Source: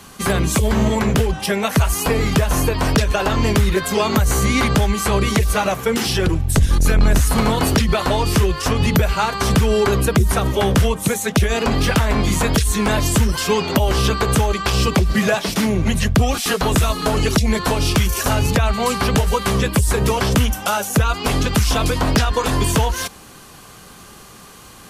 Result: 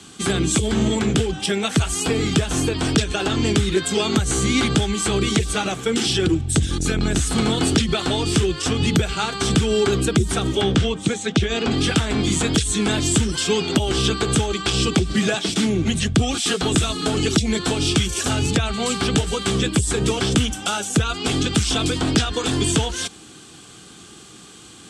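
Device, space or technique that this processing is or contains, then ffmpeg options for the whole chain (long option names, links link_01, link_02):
car door speaker: -filter_complex "[0:a]highpass=81,equalizer=frequency=320:width_type=q:width=4:gain=8,equalizer=frequency=580:width_type=q:width=4:gain=-9,equalizer=frequency=1000:width_type=q:width=4:gain=-10,equalizer=frequency=1900:width_type=q:width=4:gain=-4,equalizer=frequency=3400:width_type=q:width=4:gain=7,equalizer=frequency=8000:width_type=q:width=4:gain=8,lowpass=frequency=9000:width=0.5412,lowpass=frequency=9000:width=1.3066,asettb=1/sr,asplit=3[link_01][link_02][link_03];[link_01]atrim=end=10.614[link_04];[link_02]atrim=start=10.61:end=11.71,asetpts=PTS-STARTPTS,afade=type=in:duration=0.004:curve=qsin,afade=type=out:start_time=1.096:duration=0.004:curve=qsin,lowpass=5400[link_05];[link_03]atrim=start=11.706[link_06];[link_04][link_05]acrossfade=duration=0.004:curve1=hsin:curve2=qsin[link_07];[link_07][link_06]acrossfade=duration=0.004:curve1=qsin:curve2=hsin,volume=-2dB"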